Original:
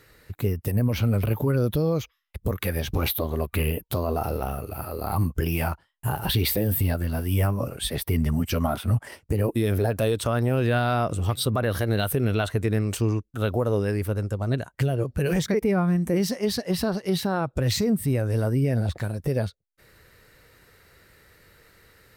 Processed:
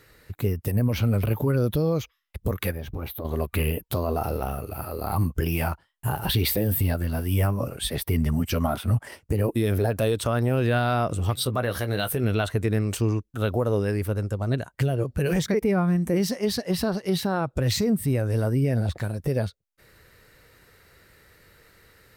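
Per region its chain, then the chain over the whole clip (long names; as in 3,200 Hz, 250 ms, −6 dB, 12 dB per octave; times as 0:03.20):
0:02.71–0:03.25: parametric band 6,500 Hz −12 dB 2.9 octaves + downward compressor 2 to 1, threshold −34 dBFS
0:11.44–0:12.24: low-shelf EQ 400 Hz −4.5 dB + double-tracking delay 16 ms −9 dB
whole clip: no processing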